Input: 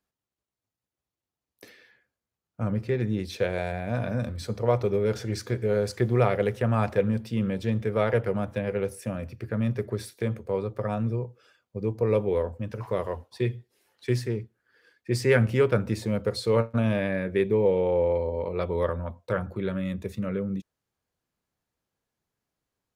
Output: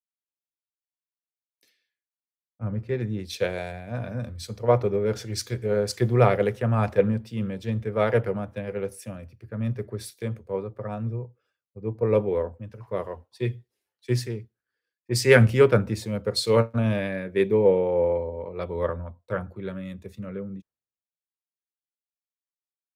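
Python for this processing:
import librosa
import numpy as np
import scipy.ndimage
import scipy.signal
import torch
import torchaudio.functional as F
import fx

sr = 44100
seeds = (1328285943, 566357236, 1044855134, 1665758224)

y = fx.band_widen(x, sr, depth_pct=100)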